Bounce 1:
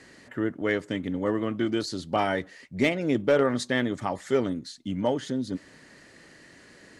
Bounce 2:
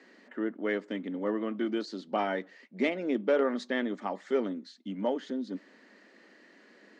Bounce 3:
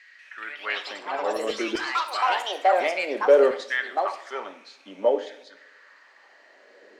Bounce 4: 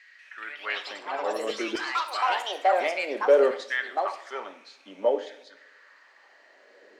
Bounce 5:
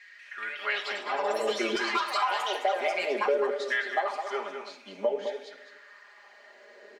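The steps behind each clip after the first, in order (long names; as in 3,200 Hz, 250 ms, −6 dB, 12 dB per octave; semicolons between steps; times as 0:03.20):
elliptic high-pass filter 200 Hz, stop band 40 dB; high-frequency loss of the air 140 metres; level −3.5 dB
auto-filter high-pass saw down 0.57 Hz 410–2,100 Hz; delay with pitch and tempo change per echo 190 ms, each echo +5 semitones, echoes 3; coupled-rooms reverb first 0.57 s, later 1.7 s, from −18 dB, DRR 8 dB; level +2.5 dB
low-shelf EQ 100 Hz −10.5 dB; level −2 dB
comb filter 4.9 ms, depth 87%; downward compressor 6 to 1, threshold −24 dBFS, peak gain reduction 13.5 dB; slap from a distant wall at 36 metres, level −7 dB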